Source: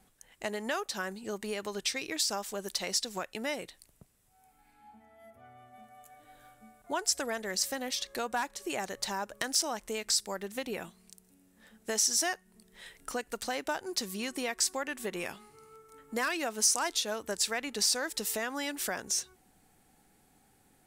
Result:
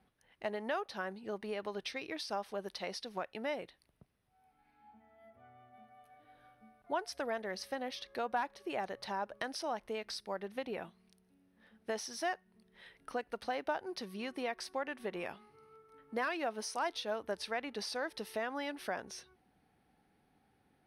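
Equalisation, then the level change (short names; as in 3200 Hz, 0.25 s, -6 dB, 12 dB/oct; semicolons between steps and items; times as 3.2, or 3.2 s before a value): HPF 45 Hz; dynamic EQ 690 Hz, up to +5 dB, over -45 dBFS, Q 1.2; running mean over 6 samples; -5.0 dB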